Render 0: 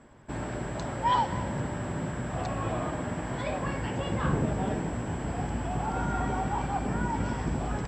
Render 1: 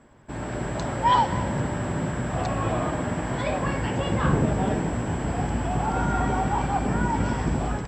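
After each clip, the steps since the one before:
automatic gain control gain up to 5.5 dB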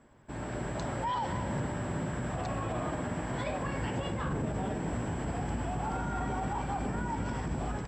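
brickwall limiter −19 dBFS, peak gain reduction 9.5 dB
level −6 dB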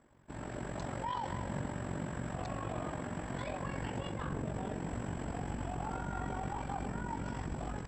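amplitude modulation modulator 46 Hz, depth 50%
level −2 dB

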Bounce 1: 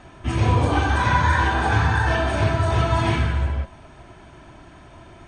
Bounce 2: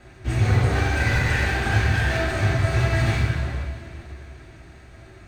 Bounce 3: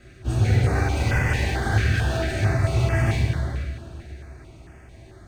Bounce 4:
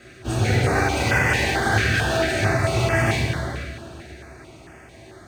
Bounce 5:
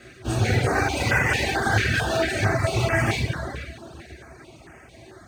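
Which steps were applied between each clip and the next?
lower of the sound and its delayed copy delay 0.48 ms; coupled-rooms reverb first 0.33 s, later 3.7 s, from −19 dB, DRR −4 dB; level −6 dB
notch on a step sequencer 4.5 Hz 900–3,900 Hz
high-pass filter 290 Hz 6 dB per octave; level +7 dB
reverb reduction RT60 0.8 s

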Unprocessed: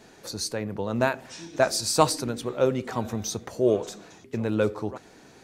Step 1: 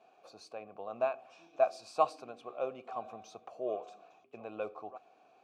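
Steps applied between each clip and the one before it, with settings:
formant filter a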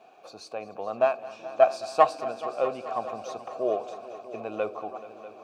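phase distortion by the signal itself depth 0.052 ms
echo machine with several playback heads 214 ms, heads all three, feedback 64%, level −19 dB
level +9 dB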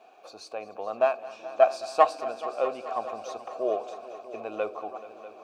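parametric band 140 Hz −11.5 dB 1.1 octaves

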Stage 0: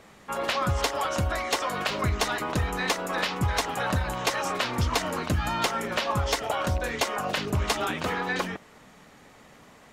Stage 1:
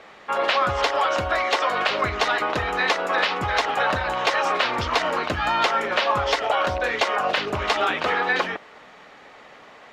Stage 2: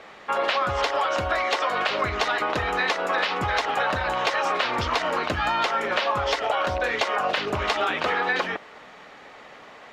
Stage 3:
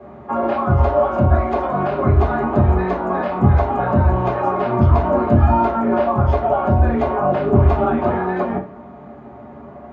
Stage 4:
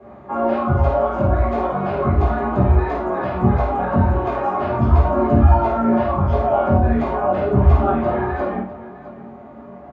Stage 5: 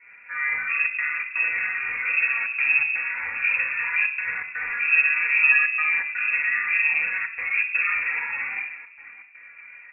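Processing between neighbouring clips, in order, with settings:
three-way crossover with the lows and the highs turned down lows −15 dB, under 370 Hz, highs −21 dB, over 4,800 Hz; notch filter 990 Hz, Q 28; in parallel at −1.5 dB: brickwall limiter −20.5 dBFS, peak gain reduction 7.5 dB; on the sum: level +3 dB
downward compressor 3 to 1, threshold −22 dBFS, peak gain reduction 5.5 dB; level +1 dB
convolution reverb RT60 0.40 s, pre-delay 3 ms, DRR −8 dB; level −15.5 dB
multi-voice chorus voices 2, 0.38 Hz, delay 18 ms, depth 4.2 ms; multi-tap delay 52/83/656 ms −5/−11/−16 dB
gate pattern "xxxxxxx.xx.xx" 122 BPM −60 dB; rectangular room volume 2,100 cubic metres, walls furnished, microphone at 1.7 metres; voice inversion scrambler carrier 2,600 Hz; level −8.5 dB

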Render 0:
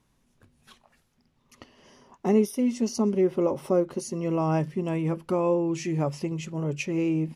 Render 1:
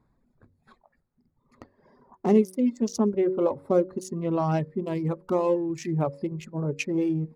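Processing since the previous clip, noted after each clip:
adaptive Wiener filter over 15 samples
reverb reduction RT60 1.8 s
hum removal 93.35 Hz, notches 6
level +2.5 dB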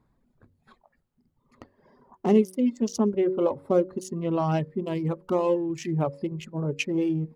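parametric band 3,000 Hz +7 dB 0.3 octaves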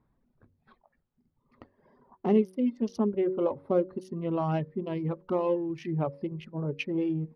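moving average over 6 samples
level −3.5 dB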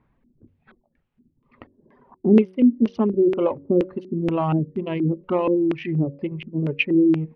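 auto-filter low-pass square 2.1 Hz 310–2,600 Hz
level +6 dB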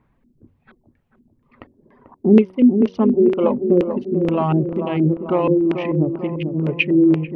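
delay with a low-pass on its return 441 ms, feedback 52%, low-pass 1,200 Hz, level −7.5 dB
level +3 dB

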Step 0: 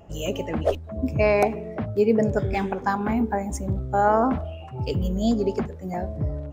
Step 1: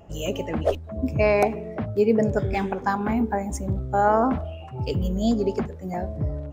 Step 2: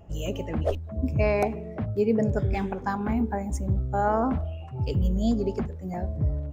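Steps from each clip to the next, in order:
no processing that can be heard
low-shelf EQ 150 Hz +10 dB; level −5.5 dB

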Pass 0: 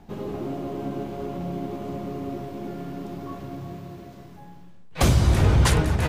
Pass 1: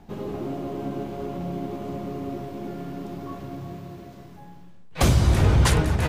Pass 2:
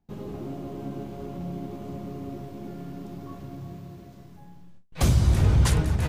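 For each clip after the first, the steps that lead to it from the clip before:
no processing that can be heard
noise gate with hold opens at −39 dBFS; bass and treble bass +6 dB, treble +4 dB; level −7 dB

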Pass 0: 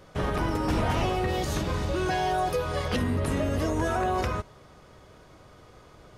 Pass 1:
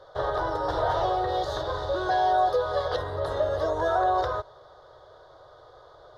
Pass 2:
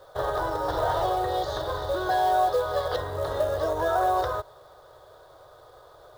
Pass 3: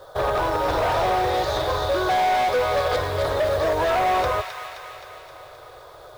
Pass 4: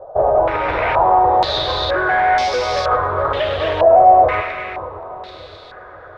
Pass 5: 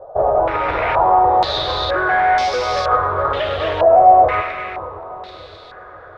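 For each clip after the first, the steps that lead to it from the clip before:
drawn EQ curve 130 Hz 0 dB, 230 Hz −23 dB, 330 Hz +2 dB, 570 Hz +15 dB, 1,700 Hz +8 dB, 2,500 Hz −17 dB, 3,600 Hz +13 dB, 7,900 Hz −9 dB; level −8 dB
log-companded quantiser 6 bits
gain into a clipping stage and back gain 24.5 dB; delay with a high-pass on its return 262 ms, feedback 62%, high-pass 1,500 Hz, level −5 dB; level +6.5 dB
echo with a time of its own for lows and highs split 580 Hz, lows 574 ms, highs 99 ms, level −9.5 dB; low-pass on a step sequencer 2.1 Hz 700–5,400 Hz; level +1 dB
on a send at −19.5 dB: low-pass with resonance 1,300 Hz, resonance Q 15 + convolution reverb RT60 0.25 s, pre-delay 3 ms; on the sum: level −1 dB

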